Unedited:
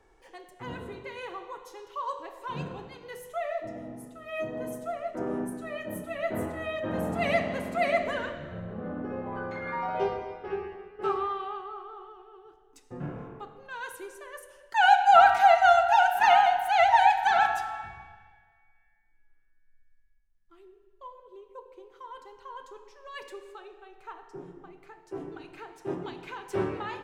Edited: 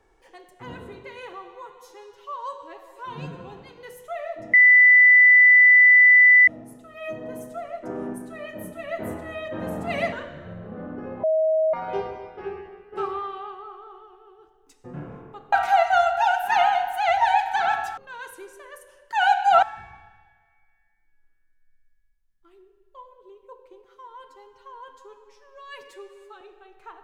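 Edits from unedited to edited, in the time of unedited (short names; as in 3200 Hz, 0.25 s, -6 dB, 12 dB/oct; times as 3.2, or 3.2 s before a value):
1.33–2.82 stretch 1.5×
3.79 add tone 1990 Hz -9.5 dBFS 1.94 s
7.44–8.19 cut
9.3–9.8 bleep 634 Hz -17.5 dBFS
13.59–15.24 move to 17.69
21.91–23.62 stretch 1.5×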